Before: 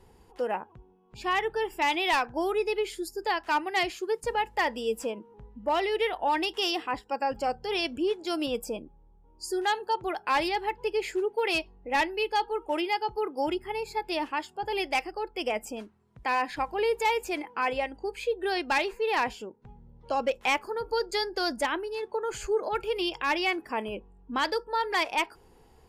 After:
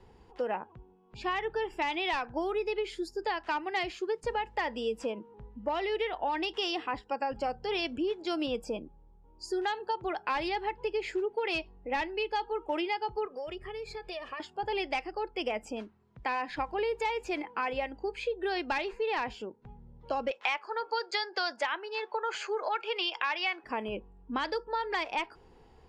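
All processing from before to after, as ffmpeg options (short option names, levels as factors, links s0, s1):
-filter_complex "[0:a]asettb=1/sr,asplit=3[s0][s1][s2];[s0]atrim=end=13.254[s3];[s1]atrim=start=13.25:end=14.4,asetpts=PTS-STARTPTS,afade=t=in:d=0.004:c=qsin,afade=t=out:st=1.146:d=0.004:c=qsin,aecho=1:1:1.7:0.8,atrim=end_sample=50715,acompressor=threshold=0.0141:ratio=4:attack=3.2:release=140:knee=1:detection=peak[s4];[s2]atrim=start=14.396[s5];[s3][s4]acrossfade=d=0.004:c1=hsin:c2=qsin[s6];[s6][s5]acrossfade=d=0.004:c1=qsin:c2=hsin,asettb=1/sr,asplit=3[s7][s8][s9];[s7]atrim=end=20.314[s10];[s8]atrim=start=20.31:end=23.64,asetpts=PTS-STARTPTS,afade=t=in:d=0.004:c=qsin,afade=t=out:st=3.326:d=0.004:c=qsin,acontrast=68,highpass=790,lowpass=5600[s11];[s9]atrim=start=23.636[s12];[s10][s11]acrossfade=d=0.004:c1=hsin:c2=qsin[s13];[s13][s12]acrossfade=d=0.004:c1=qsin:c2=hsin,lowpass=4900,acrossover=split=140[s14][s15];[s15]acompressor=threshold=0.0398:ratio=6[s16];[s14][s16]amix=inputs=2:normalize=0"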